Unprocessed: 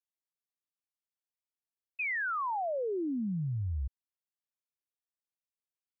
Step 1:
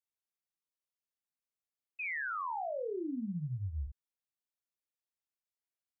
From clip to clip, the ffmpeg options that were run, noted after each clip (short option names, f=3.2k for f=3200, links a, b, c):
-filter_complex "[0:a]asplit=2[a][b];[b]adelay=40,volume=-5dB[c];[a][c]amix=inputs=2:normalize=0,volume=-5.5dB"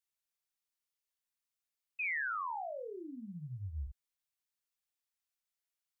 -af "equalizer=f=250:w=0.35:g=-12.5,volume=3.5dB"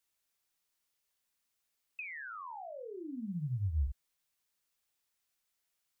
-filter_complex "[0:a]acrossover=split=220[a][b];[b]acompressor=threshold=-52dB:ratio=6[c];[a][c]amix=inputs=2:normalize=0,volume=8dB"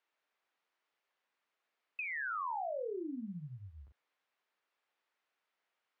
-af "highpass=380,lowpass=2.1k,volume=7.5dB"